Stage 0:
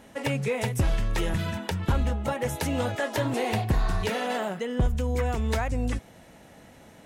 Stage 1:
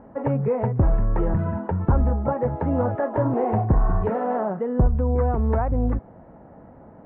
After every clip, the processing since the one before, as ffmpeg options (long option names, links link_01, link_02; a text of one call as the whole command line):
ffmpeg -i in.wav -af "lowpass=frequency=1200:width=0.5412,lowpass=frequency=1200:width=1.3066,volume=5.5dB" out.wav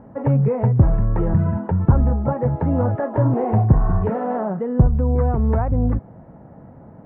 ffmpeg -i in.wav -af "equalizer=frequency=130:width_type=o:width=1.4:gain=8.5" out.wav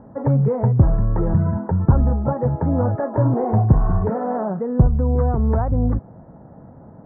ffmpeg -i in.wav -af "lowpass=frequency=1700:width=0.5412,lowpass=frequency=1700:width=1.3066" out.wav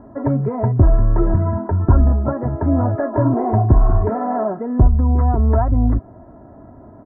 ffmpeg -i in.wav -af "aecho=1:1:3:0.72,volume=1.5dB" out.wav